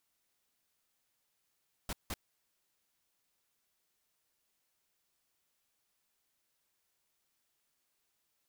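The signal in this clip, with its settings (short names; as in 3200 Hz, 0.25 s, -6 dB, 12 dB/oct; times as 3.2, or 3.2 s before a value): noise bursts pink, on 0.04 s, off 0.17 s, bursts 2, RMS -38 dBFS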